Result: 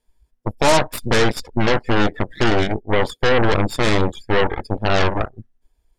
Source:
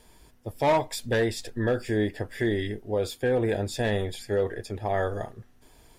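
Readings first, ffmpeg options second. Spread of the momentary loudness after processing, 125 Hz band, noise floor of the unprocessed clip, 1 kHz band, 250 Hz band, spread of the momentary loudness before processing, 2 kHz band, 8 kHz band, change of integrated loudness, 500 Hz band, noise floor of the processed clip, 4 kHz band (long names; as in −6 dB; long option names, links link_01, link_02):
6 LU, +8.5 dB, −57 dBFS, +10.5 dB, +8.0 dB, 7 LU, +11.5 dB, +9.5 dB, +8.5 dB, +6.5 dB, −70 dBFS, +13.0 dB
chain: -af "afftdn=noise_reduction=25:noise_floor=-35,aeval=exprs='0.188*(cos(1*acos(clip(val(0)/0.188,-1,1)))-cos(1*PI/2))+0.075*(cos(8*acos(clip(val(0)/0.188,-1,1)))-cos(8*PI/2))':channel_layout=same,volume=5.5dB"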